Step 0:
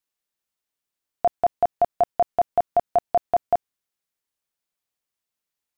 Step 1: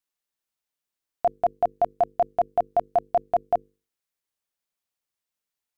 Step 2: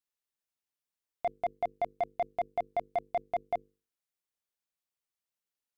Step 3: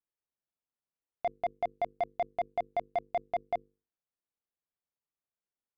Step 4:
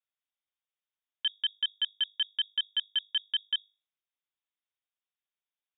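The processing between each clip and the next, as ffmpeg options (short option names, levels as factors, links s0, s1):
-af "bandreject=f=50:t=h:w=6,bandreject=f=100:t=h:w=6,bandreject=f=150:t=h:w=6,bandreject=f=200:t=h:w=6,bandreject=f=250:t=h:w=6,bandreject=f=300:t=h:w=6,bandreject=f=350:t=h:w=6,bandreject=f=400:t=h:w=6,bandreject=f=450:t=h:w=6,bandreject=f=500:t=h:w=6,volume=0.794"
-af "asoftclip=type=tanh:threshold=0.126,volume=0.501"
-af "adynamicsmooth=sensitivity=7:basefreq=1600"
-af "lowpass=f=3200:t=q:w=0.5098,lowpass=f=3200:t=q:w=0.6013,lowpass=f=3200:t=q:w=0.9,lowpass=f=3200:t=q:w=2.563,afreqshift=-3800,volume=1.19"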